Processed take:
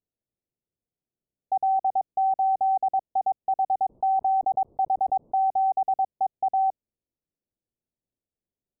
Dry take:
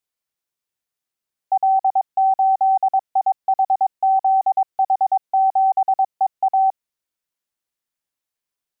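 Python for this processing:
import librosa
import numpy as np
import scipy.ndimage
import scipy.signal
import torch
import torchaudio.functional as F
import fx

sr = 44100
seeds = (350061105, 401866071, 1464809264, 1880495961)

y = scipy.ndimage.gaussian_filter1d(x, 16.0, mode='constant')
y = fx.env_flatten(y, sr, amount_pct=50, at=(3.89, 5.45))
y = F.gain(torch.from_numpy(y), 7.0).numpy()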